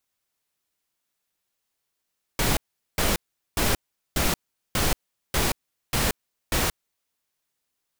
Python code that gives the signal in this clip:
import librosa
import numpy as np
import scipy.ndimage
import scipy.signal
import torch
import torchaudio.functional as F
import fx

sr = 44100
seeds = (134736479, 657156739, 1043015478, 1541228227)

y = fx.noise_burst(sr, seeds[0], colour='pink', on_s=0.18, off_s=0.41, bursts=8, level_db=-22.5)